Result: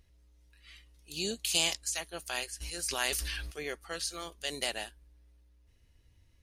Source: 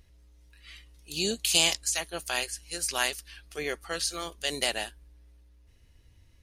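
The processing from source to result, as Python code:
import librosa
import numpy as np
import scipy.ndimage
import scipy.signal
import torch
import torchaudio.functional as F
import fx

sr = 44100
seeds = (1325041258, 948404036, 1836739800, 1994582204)

y = fx.sustainer(x, sr, db_per_s=20.0, at=(2.6, 3.5), fade=0.02)
y = y * librosa.db_to_amplitude(-5.5)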